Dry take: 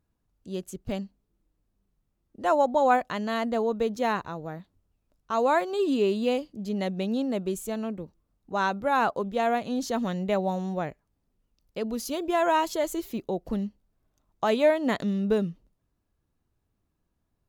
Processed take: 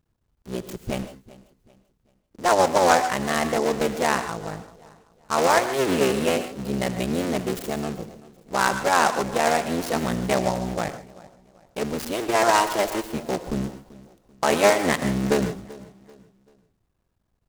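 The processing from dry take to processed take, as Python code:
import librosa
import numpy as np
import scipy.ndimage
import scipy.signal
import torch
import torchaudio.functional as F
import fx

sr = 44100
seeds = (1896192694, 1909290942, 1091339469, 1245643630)

y = fx.cycle_switch(x, sr, every=3, mode='muted')
y = fx.peak_eq(y, sr, hz=280.0, db=-3.5, octaves=0.43)
y = fx.rev_gated(y, sr, seeds[0], gate_ms=170, shape='rising', drr_db=10.0)
y = fx.vibrato(y, sr, rate_hz=3.7, depth_cents=10.0)
y = fx.echo_feedback(y, sr, ms=387, feedback_pct=36, wet_db=-19.5)
y = fx.dynamic_eq(y, sr, hz=2100.0, q=1.3, threshold_db=-45.0, ratio=4.0, max_db=5)
y = fx.noise_mod_delay(y, sr, seeds[1], noise_hz=5200.0, depth_ms=0.034)
y = y * librosa.db_to_amplitude(5.0)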